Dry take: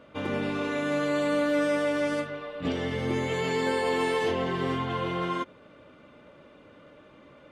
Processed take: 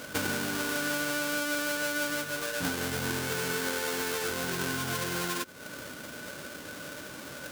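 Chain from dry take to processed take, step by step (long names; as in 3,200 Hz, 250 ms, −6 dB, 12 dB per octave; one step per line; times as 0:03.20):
each half-wave held at its own peak
high-pass filter 55 Hz
high-shelf EQ 2,700 Hz +11 dB
downward compressor 8 to 1, threshold −32 dBFS, peak gain reduction 17.5 dB
hollow resonant body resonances 1,500 Hz, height 16 dB, ringing for 50 ms
level +3 dB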